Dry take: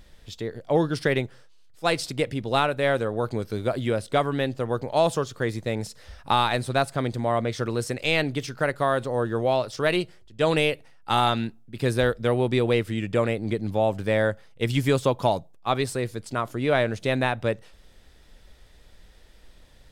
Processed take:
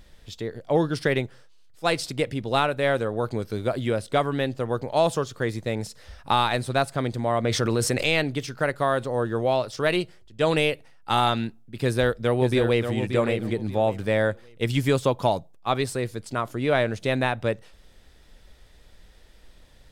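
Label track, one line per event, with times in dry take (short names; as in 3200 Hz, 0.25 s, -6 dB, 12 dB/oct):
7.440000	8.190000	fast leveller amount 70%
11.830000	12.930000	echo throw 0.58 s, feedback 25%, level -7.5 dB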